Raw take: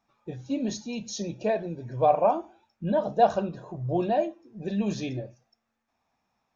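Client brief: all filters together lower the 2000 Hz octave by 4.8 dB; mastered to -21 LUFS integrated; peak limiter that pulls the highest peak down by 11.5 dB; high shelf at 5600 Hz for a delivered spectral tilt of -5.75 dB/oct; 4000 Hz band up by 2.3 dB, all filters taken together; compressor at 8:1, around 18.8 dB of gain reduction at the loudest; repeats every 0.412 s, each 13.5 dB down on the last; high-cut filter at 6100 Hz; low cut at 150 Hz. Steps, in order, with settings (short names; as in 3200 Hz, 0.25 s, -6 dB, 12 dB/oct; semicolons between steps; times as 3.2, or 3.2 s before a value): HPF 150 Hz; LPF 6100 Hz; bell 2000 Hz -8.5 dB; bell 4000 Hz +4.5 dB; high shelf 5600 Hz +3.5 dB; compressor 8:1, threshold -35 dBFS; limiter -36.5 dBFS; feedback echo 0.412 s, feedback 21%, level -13.5 dB; gain +24 dB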